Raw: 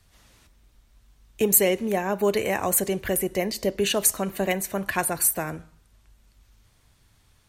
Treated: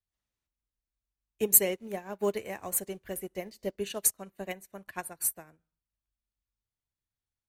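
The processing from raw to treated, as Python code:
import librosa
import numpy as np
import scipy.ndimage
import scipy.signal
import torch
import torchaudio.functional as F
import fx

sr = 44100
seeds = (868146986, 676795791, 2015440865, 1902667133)

y = fx.law_mismatch(x, sr, coded='mu', at=(1.69, 3.76))
y = fx.upward_expand(y, sr, threshold_db=-37.0, expansion=2.5)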